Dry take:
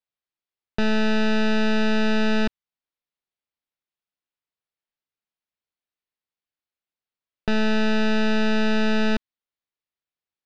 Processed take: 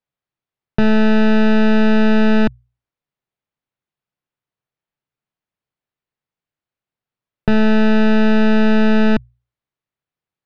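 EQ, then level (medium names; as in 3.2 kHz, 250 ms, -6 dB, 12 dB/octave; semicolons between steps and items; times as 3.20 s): low-pass 1.7 kHz 6 dB/octave; peaking EQ 130 Hz +10.5 dB 0.65 oct; hum notches 60/120 Hz; +7.5 dB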